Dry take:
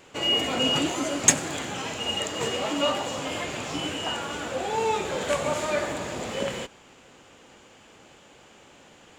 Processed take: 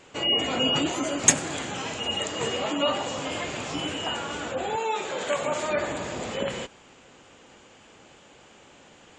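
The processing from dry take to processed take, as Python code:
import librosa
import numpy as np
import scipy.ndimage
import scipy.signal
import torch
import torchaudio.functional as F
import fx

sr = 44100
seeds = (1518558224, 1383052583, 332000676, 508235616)

y = fx.highpass(x, sr, hz=fx.line((4.76, 690.0), (5.66, 170.0)), slope=6, at=(4.76, 5.66), fade=0.02)
y = fx.spec_gate(y, sr, threshold_db=-30, keep='strong')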